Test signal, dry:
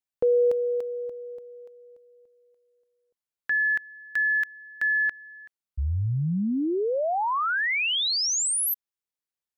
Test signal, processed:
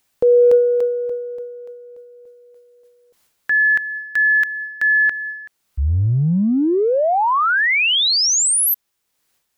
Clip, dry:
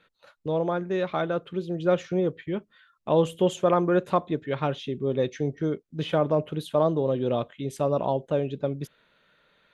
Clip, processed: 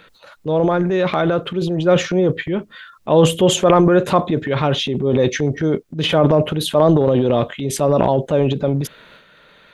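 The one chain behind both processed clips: upward compressor 1.5:1, threshold -43 dBFS; transient shaper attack -2 dB, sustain +10 dB; trim +9 dB

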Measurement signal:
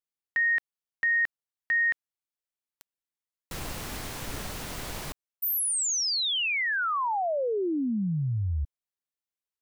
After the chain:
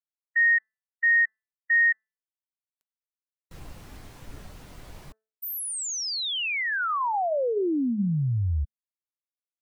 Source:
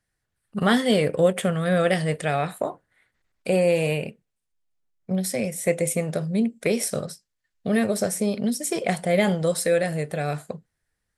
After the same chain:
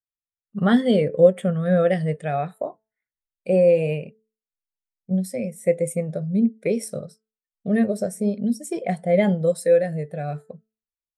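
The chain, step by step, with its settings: de-hum 219.3 Hz, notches 9; spectral contrast expander 1.5:1; trim +4.5 dB

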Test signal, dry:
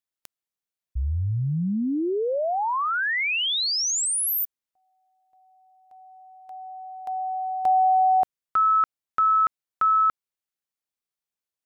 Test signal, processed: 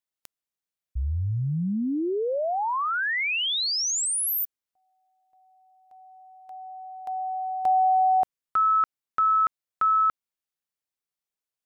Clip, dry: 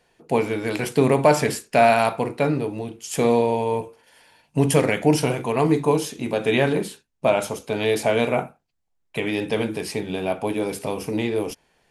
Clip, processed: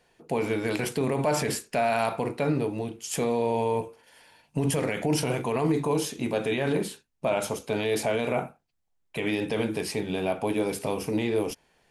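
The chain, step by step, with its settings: peak limiter -14.5 dBFS; trim -1.5 dB

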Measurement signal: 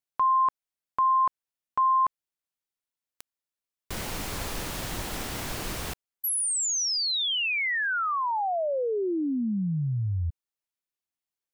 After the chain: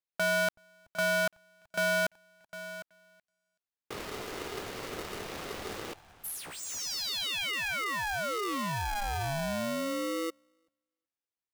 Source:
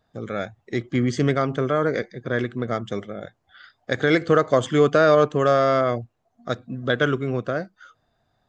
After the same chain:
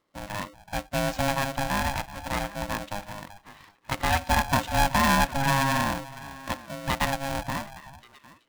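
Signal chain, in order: median filter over 5 samples; repeats whose band climbs or falls 377 ms, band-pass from 360 Hz, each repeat 1.4 oct, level -11 dB; polarity switched at an audio rate 410 Hz; trim -5.5 dB

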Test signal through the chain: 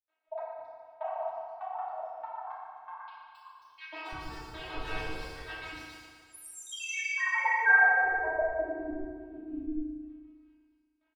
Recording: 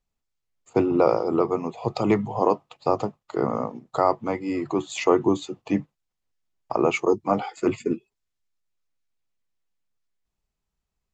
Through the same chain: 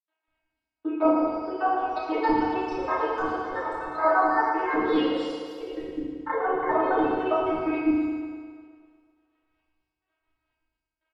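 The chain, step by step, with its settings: random holes in the spectrogram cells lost 38%; peaking EQ 4.9 kHz +12 dB 2 oct; comb 7.4 ms, depth 86%; crackle 440 per s -55 dBFS; robot voice 317 Hz; trance gate ".x.xx......x" 195 bpm -60 dB; ever faster or slower copies 760 ms, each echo +3 st, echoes 3; distance through air 450 m; three bands offset in time mids, lows, highs 200/270 ms, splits 360/4200 Hz; FDN reverb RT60 2 s, low-frequency decay 0.8×, high-frequency decay 0.85×, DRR -9.5 dB; trim -4.5 dB

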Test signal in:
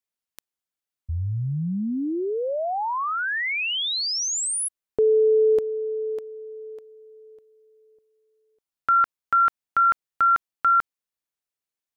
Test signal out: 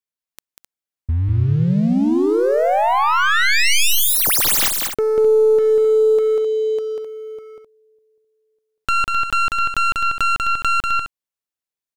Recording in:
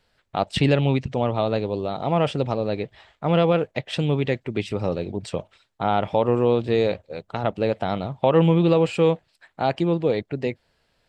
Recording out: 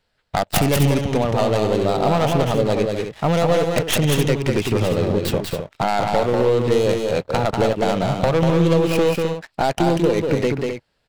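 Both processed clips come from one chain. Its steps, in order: tracing distortion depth 0.29 ms; compression 8:1, threshold -28 dBFS; waveshaping leveller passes 3; on a send: loudspeakers at several distances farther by 66 m -4 dB, 89 m -9 dB; on the sum: trim +2.5 dB

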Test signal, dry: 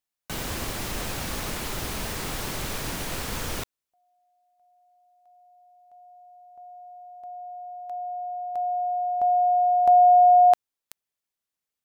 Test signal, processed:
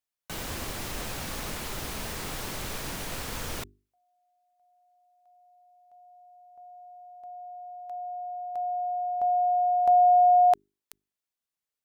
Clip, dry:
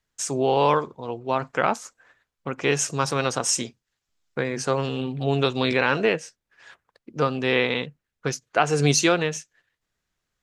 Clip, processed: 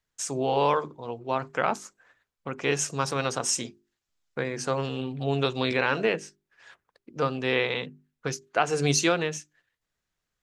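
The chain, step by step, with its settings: hum notches 50/100/150/200/250/300/350/400 Hz; trim -3.5 dB

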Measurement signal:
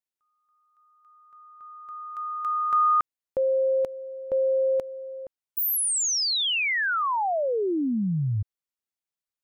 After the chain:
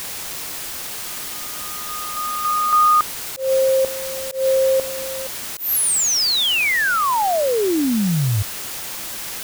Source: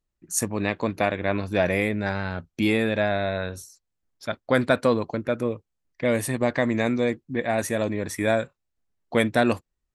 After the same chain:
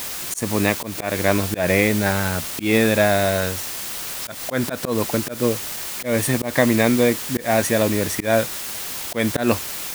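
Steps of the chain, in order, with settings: word length cut 6-bit, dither triangular; slow attack 162 ms; trim +6.5 dB

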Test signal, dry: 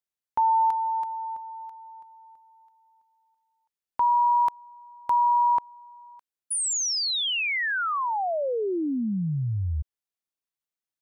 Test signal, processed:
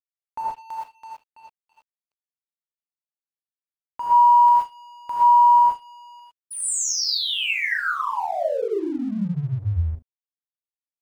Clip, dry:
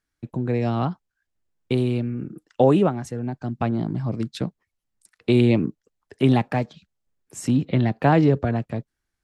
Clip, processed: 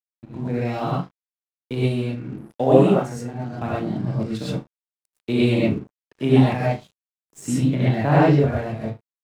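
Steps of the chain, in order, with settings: flutter echo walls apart 6.4 m, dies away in 0.23 s; gated-style reverb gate 150 ms rising, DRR -7.5 dB; crossover distortion -41 dBFS; trim -6 dB

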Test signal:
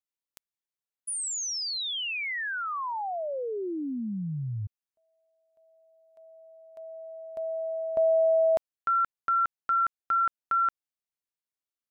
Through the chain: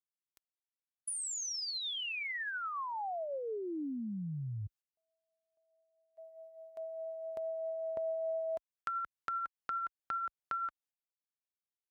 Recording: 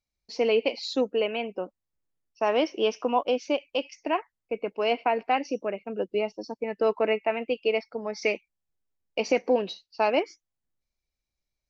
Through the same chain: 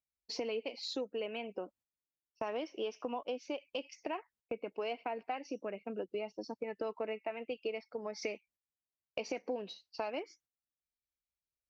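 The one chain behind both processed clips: phaser 0.78 Hz, delay 4.8 ms, feedback 22%; gate -54 dBFS, range -15 dB; compression 4:1, threshold -38 dBFS; high-pass 48 Hz

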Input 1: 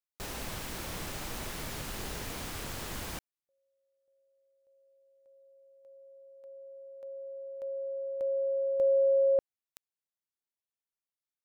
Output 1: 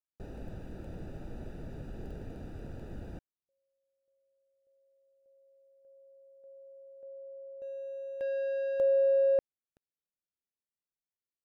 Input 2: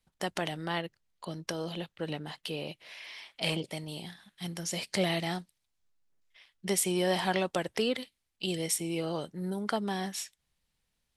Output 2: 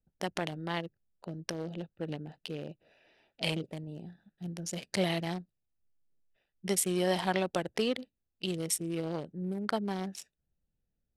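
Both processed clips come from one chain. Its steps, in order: local Wiener filter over 41 samples

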